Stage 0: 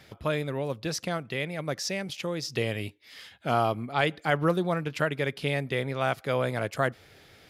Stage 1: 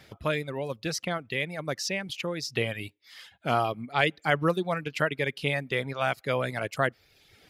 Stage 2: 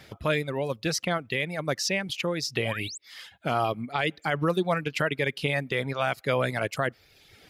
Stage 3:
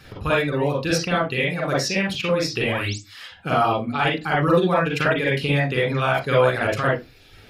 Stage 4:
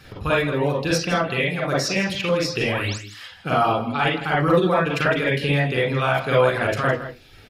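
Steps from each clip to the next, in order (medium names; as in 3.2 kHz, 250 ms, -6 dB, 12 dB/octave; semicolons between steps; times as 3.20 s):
reverb removal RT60 0.83 s; dynamic bell 2.4 kHz, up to +4 dB, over -46 dBFS, Q 1.2
peak limiter -18 dBFS, peak gain reduction 8.5 dB; painted sound rise, 2.57–2.98 s, 310–8500 Hz -42 dBFS; trim +3.5 dB
reverberation RT60 0.20 s, pre-delay 38 ms, DRR -4 dB
delay 161 ms -13 dB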